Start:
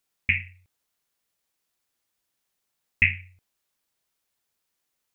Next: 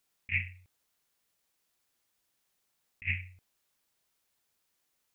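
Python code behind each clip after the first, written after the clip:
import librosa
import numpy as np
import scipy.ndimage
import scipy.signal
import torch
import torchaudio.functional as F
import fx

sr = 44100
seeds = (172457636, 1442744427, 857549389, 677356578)

y = fx.over_compress(x, sr, threshold_db=-27.0, ratio=-0.5)
y = y * 10.0 ** (-4.0 / 20.0)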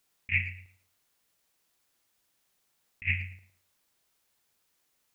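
y = fx.echo_tape(x, sr, ms=112, feedback_pct=33, wet_db=-10.0, lp_hz=2000.0, drive_db=16.0, wow_cents=24)
y = y * 10.0 ** (3.5 / 20.0)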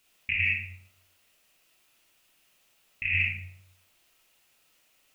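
y = fx.peak_eq(x, sr, hz=2700.0, db=9.5, octaves=0.51)
y = fx.over_compress(y, sr, threshold_db=-28.0, ratio=-1.0)
y = fx.rev_freeverb(y, sr, rt60_s=0.54, hf_ratio=0.35, predelay_ms=5, drr_db=-1.0)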